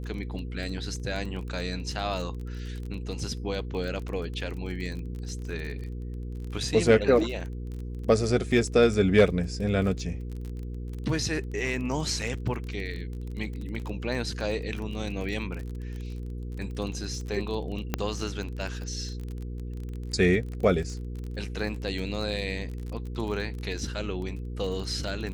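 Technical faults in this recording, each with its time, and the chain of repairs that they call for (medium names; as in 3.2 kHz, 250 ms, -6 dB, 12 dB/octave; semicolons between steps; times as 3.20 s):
crackle 27 per s -34 dBFS
hum 60 Hz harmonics 8 -35 dBFS
17.94 s: pop -11 dBFS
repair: de-click; de-hum 60 Hz, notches 8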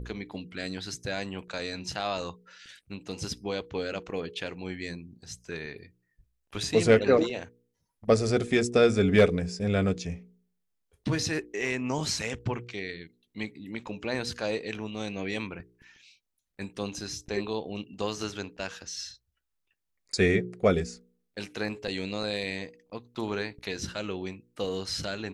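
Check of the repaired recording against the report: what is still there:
nothing left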